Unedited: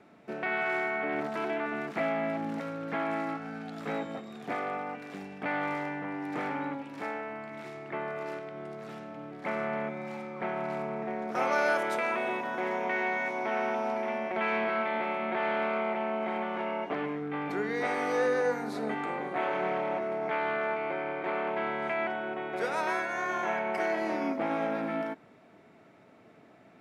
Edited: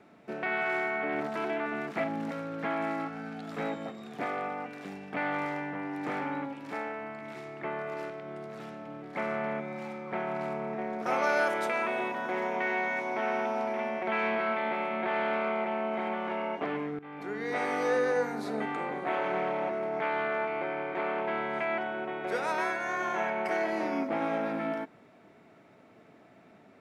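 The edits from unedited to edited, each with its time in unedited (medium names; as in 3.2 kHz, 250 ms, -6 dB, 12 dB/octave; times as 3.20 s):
2.04–2.33 s: delete
17.28–17.93 s: fade in, from -15.5 dB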